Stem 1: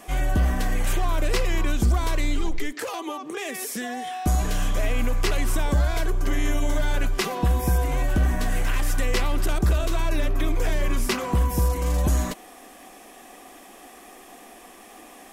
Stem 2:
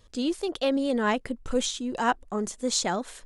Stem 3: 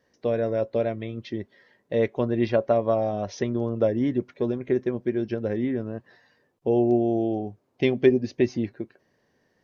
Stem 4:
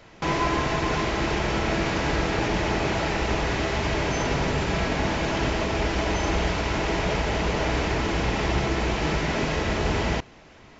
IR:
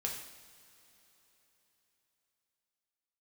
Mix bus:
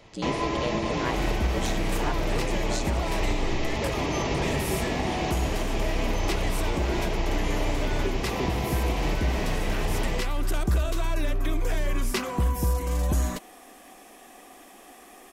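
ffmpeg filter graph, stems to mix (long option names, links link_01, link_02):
-filter_complex "[0:a]adelay=1050,volume=-3dB[link_01];[1:a]aeval=exprs='val(0)*sin(2*PI*60*n/s)':channel_layout=same,volume=-1.5dB[link_02];[2:a]volume=-11.5dB[link_03];[3:a]equalizer=frequency=1500:width=4.7:gain=-11.5,volume=-2dB[link_04];[link_01][link_02][link_03][link_04]amix=inputs=4:normalize=0,alimiter=limit=-16dB:level=0:latency=1:release=342"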